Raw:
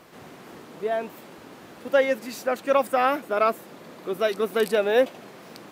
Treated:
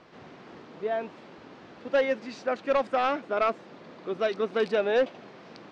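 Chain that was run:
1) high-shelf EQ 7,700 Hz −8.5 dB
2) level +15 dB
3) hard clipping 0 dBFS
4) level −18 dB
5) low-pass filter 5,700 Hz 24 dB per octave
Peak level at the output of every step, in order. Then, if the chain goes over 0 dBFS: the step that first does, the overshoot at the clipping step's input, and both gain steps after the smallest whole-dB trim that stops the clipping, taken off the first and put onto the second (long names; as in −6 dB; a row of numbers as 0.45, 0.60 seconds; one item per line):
−8.0, +7.0, 0.0, −18.0, −17.0 dBFS
step 2, 7.0 dB
step 2 +8 dB, step 4 −11 dB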